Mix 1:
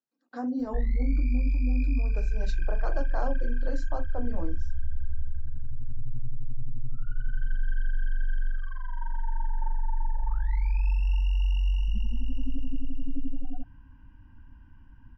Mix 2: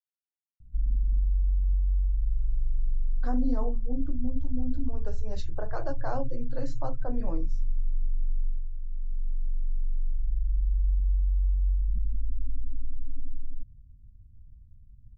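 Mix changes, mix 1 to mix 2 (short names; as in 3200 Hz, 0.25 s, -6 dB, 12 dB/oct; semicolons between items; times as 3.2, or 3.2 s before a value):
speech: entry +2.90 s; background: add inverse Chebyshev low-pass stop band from 730 Hz, stop band 70 dB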